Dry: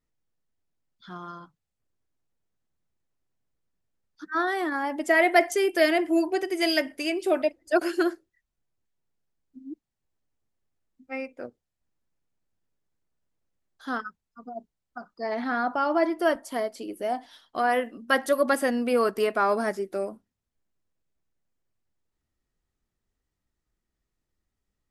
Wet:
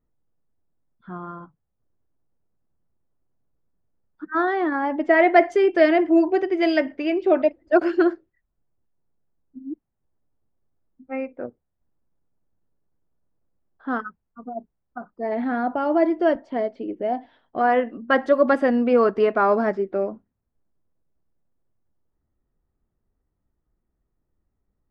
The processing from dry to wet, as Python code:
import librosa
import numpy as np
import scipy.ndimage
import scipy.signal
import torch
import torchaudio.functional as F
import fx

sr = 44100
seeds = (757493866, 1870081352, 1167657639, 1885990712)

y = fx.peak_eq(x, sr, hz=1200.0, db=-8.0, octaves=0.82, at=(15.1, 17.61))
y = fx.env_lowpass(y, sr, base_hz=1400.0, full_db=-19.5)
y = fx.spacing_loss(y, sr, db_at_10k=34)
y = F.gain(torch.from_numpy(y), 7.5).numpy()